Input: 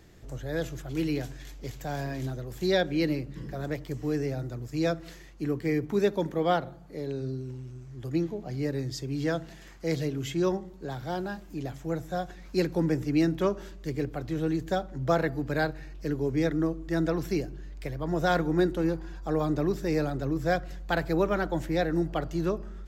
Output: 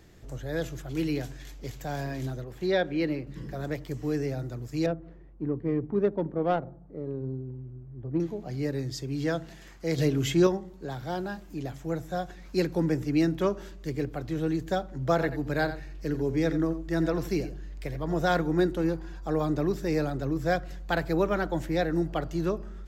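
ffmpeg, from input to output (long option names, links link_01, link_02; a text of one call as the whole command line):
ffmpeg -i in.wav -filter_complex "[0:a]asettb=1/sr,asplit=3[link_01][link_02][link_03];[link_01]atrim=end=2.444[link_04];[link_02]atrim=start=2.44:end=3.27,asetpts=PTS-STARTPTS,afade=type=in:duration=0.004:curve=qsin,afade=type=out:start_time=0.826:duration=0.004:curve=qsin,bass=frequency=250:gain=-4,treble=frequency=4000:gain=-11[link_05];[link_03]atrim=start=3.266[link_06];[link_04][link_05]acrossfade=duration=0.004:curve1=hsin:curve2=qsin[link_07];[link_07][link_06]acrossfade=duration=0.004:curve1=qsin:curve2=hsin,asettb=1/sr,asplit=3[link_08][link_09][link_10];[link_08]atrim=end=4.864[link_11];[link_09]atrim=start=4.86:end=8.2,asetpts=PTS-STARTPTS,afade=type=in:duration=0.004:curve=qsin,afade=type=out:start_time=3.336:duration=0.004:curve=qsin,adynamicsmooth=sensitivity=0.5:basefreq=780[link_12];[link_10]atrim=start=8.196[link_13];[link_11][link_12]acrossfade=duration=0.004:curve1=hsin:curve2=qsin[link_14];[link_14][link_13]acrossfade=duration=0.004:curve1=qsin:curve2=hsin,asettb=1/sr,asplit=3[link_15][link_16][link_17];[link_15]atrim=end=9.984[link_18];[link_16]atrim=start=9.98:end=10.47,asetpts=PTS-STARTPTS,afade=type=in:duration=0.004:curve=qsin,afade=type=out:start_time=0.486:duration=0.004:curve=qsin,acontrast=49[link_19];[link_17]atrim=start=10.466[link_20];[link_18][link_19]acrossfade=duration=0.004:curve1=hsin:curve2=qsin[link_21];[link_21][link_20]acrossfade=duration=0.004:curve1=qsin:curve2=hsin,asettb=1/sr,asplit=3[link_22][link_23][link_24];[link_22]atrim=end=15.124[link_25];[link_23]atrim=start=15.12:end=18.22,asetpts=PTS-STARTPTS,afade=type=in:duration=0.004:curve=qsin,afade=type=out:start_time=3.096:duration=0.004:curve=qsin,aecho=1:1:86:0.251,atrim=end_sample=136710[link_26];[link_24]atrim=start=18.216[link_27];[link_25][link_26]acrossfade=duration=0.004:curve1=hsin:curve2=qsin[link_28];[link_28][link_27]acrossfade=duration=0.004:curve1=qsin:curve2=hsin" out.wav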